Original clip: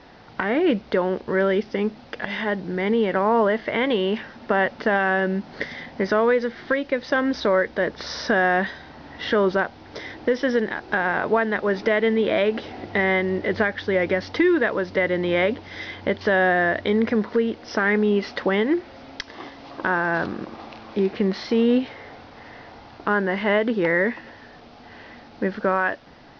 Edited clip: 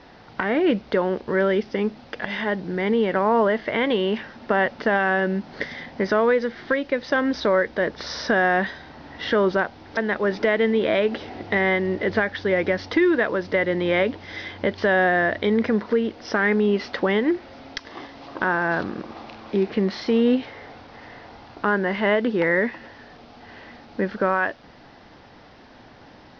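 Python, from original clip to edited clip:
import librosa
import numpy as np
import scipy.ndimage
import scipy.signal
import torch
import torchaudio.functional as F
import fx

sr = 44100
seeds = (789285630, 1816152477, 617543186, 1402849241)

y = fx.edit(x, sr, fx.cut(start_s=9.97, length_s=1.43), tone=tone)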